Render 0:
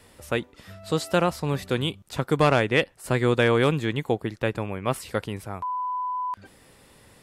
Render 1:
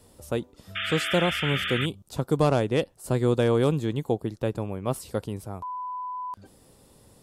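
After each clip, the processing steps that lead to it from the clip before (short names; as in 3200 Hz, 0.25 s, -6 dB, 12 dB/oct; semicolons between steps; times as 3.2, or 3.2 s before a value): bell 2000 Hz -13.5 dB 1.5 oct; painted sound noise, 0.75–1.86, 1200–3600 Hz -30 dBFS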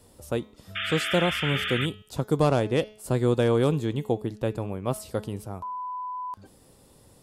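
de-hum 213.7 Hz, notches 33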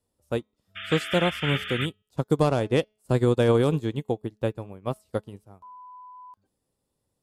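limiter -15.5 dBFS, peak gain reduction 4.5 dB; upward expander 2.5:1, over -41 dBFS; gain +6 dB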